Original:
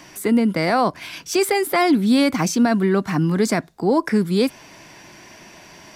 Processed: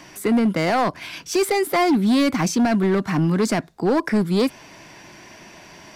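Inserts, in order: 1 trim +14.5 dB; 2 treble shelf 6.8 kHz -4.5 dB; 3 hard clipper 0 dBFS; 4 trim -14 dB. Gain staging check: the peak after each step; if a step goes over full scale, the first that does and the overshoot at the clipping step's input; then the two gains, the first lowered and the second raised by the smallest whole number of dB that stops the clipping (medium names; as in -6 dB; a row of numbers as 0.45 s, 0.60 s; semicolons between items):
+7.5 dBFS, +7.5 dBFS, 0.0 dBFS, -14.0 dBFS; step 1, 7.5 dB; step 1 +6.5 dB, step 4 -6 dB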